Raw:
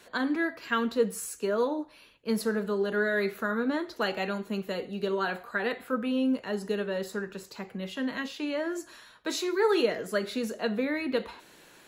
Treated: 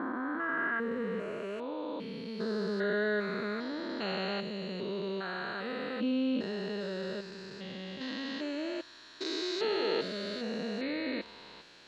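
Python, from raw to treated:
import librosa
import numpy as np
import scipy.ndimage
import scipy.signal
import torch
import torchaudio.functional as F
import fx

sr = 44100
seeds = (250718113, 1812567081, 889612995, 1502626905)

y = fx.spec_steps(x, sr, hold_ms=400)
y = fx.filter_sweep_lowpass(y, sr, from_hz=1200.0, to_hz=4600.0, start_s=0.13, end_s=2.55, q=2.6)
y = F.gain(torch.from_numpy(y), -1.5).numpy()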